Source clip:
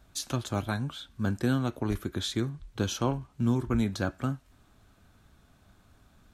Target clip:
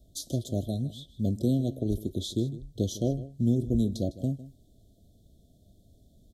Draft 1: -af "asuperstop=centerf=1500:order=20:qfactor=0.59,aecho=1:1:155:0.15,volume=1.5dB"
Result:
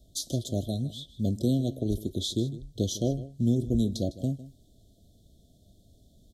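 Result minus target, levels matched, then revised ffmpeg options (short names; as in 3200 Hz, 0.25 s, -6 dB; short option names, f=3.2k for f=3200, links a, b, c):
4000 Hz band +4.5 dB
-af "asuperstop=centerf=1500:order=20:qfactor=0.59,equalizer=f=4.1k:t=o:w=3:g=-5,aecho=1:1:155:0.15,volume=1.5dB"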